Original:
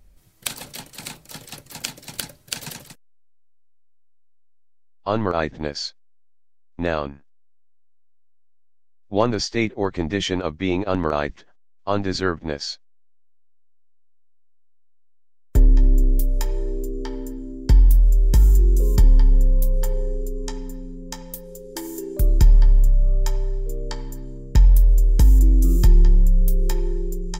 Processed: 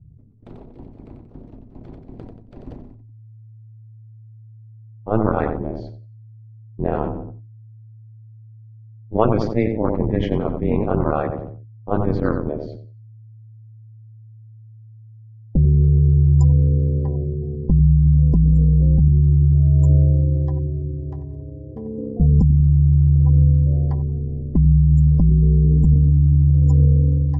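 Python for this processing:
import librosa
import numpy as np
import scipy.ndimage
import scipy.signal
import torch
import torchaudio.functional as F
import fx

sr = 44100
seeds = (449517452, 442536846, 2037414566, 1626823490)

p1 = fx.notch(x, sr, hz=1600.0, q=7.0)
p2 = p1 + fx.echo_feedback(p1, sr, ms=91, feedback_pct=40, wet_db=-9.0, dry=0)
p3 = p2 * np.sin(2.0 * np.pi * 110.0 * np.arange(len(p2)) / sr)
p4 = fx.spec_gate(p3, sr, threshold_db=-30, keep='strong')
p5 = fx.env_lowpass(p4, sr, base_hz=340.0, full_db=-11.0)
p6 = fx.over_compress(p5, sr, threshold_db=-18.0, ratio=-0.5)
p7 = p5 + (p6 * librosa.db_to_amplitude(2.0))
p8 = fx.low_shelf(p7, sr, hz=330.0, db=5.0)
p9 = fx.sustainer(p8, sr, db_per_s=49.0)
y = p9 * librosa.db_to_amplitude(-7.0)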